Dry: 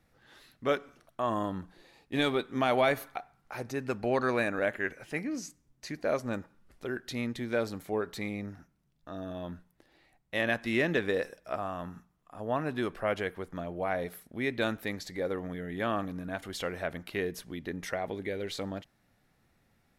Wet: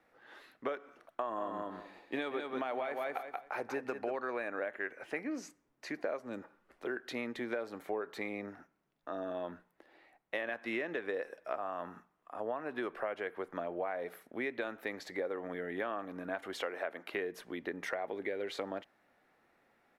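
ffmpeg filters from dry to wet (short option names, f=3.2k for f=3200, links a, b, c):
-filter_complex "[0:a]asplit=3[a][b][c];[a]afade=t=out:st=1.36:d=0.02[d];[b]aecho=1:1:183|366|549:0.501|0.0852|0.0145,afade=t=in:st=1.36:d=0.02,afade=t=out:st=4.14:d=0.02[e];[c]afade=t=in:st=4.14:d=0.02[f];[d][e][f]amix=inputs=3:normalize=0,asettb=1/sr,asplit=3[g][h][i];[g]atrim=end=6.194[j];[h]atrim=start=6.19:end=6.87,asetpts=PTS-STARTPTS,afade=t=in:d=0.004:c=qsin,afade=t=out:st=0.676:d=0.004:c=qsin,acrossover=split=390|3000[k][l][m];[l]acompressor=threshold=-47dB:ratio=6:attack=3.2:release=140:knee=2.83:detection=peak[n];[k][n][m]amix=inputs=3:normalize=0[o];[i]atrim=start=6.866[p];[j][o]acrossfade=d=0.004:c1=hsin:c2=qsin[q];[q][p]acrossfade=d=0.004:c1=qsin:c2=hsin,asettb=1/sr,asplit=3[r][s][t];[r]atrim=end=16.624[u];[s]atrim=start=16.62:end=17.12,asetpts=PTS-STARTPTS,afade=t=in:d=0.004:c=qsin,afade=t=out:st=0.496:d=0.004:c=qsin,highpass=240[v];[t]atrim=start=17.116[w];[u][v]acrossfade=d=0.004:c1=hsin:c2=qsin[x];[x][w]acrossfade=d=0.004:c1=qsin:c2=hsin,acrossover=split=290 2600:gain=0.0794 1 0.224[y][z][aa];[y][z][aa]amix=inputs=3:normalize=0,alimiter=limit=-21.5dB:level=0:latency=1:release=355,acompressor=threshold=-38dB:ratio=6,volume=4.5dB"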